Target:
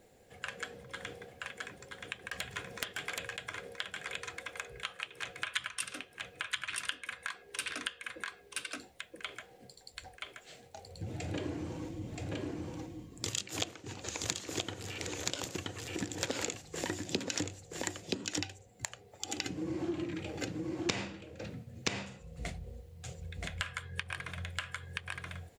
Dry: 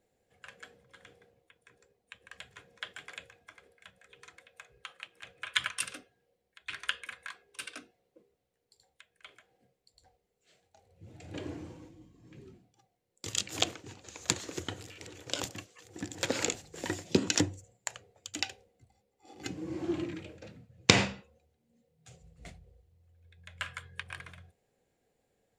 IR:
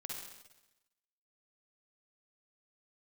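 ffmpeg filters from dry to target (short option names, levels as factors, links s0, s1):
-filter_complex "[0:a]aecho=1:1:976:0.596,asplit=3[s0][s1][s2];[s0]afade=t=out:st=2.3:d=0.02[s3];[s1]aeval=exprs='0.0891*(cos(1*acos(clip(val(0)/0.0891,-1,1)))-cos(1*PI/2))+0.01*(cos(3*acos(clip(val(0)/0.0891,-1,1)))-cos(3*PI/2))+0.0282*(cos(7*acos(clip(val(0)/0.0891,-1,1)))-cos(7*PI/2))':c=same,afade=t=in:st=2.3:d=0.02,afade=t=out:st=3.36:d=0.02[s4];[s2]afade=t=in:st=3.36:d=0.02[s5];[s3][s4][s5]amix=inputs=3:normalize=0,acompressor=threshold=0.00316:ratio=4,volume=4.73"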